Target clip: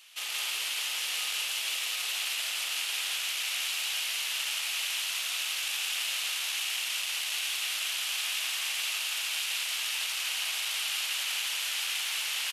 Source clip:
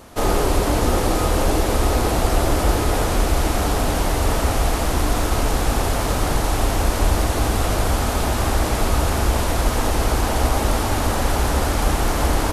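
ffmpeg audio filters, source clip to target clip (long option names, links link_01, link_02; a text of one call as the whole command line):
ffmpeg -i in.wav -af "asoftclip=type=tanh:threshold=-11.5dB,highpass=frequency=2800:width_type=q:width=3.3,aecho=1:1:113.7|169.1:0.316|0.891,volume=-7dB" out.wav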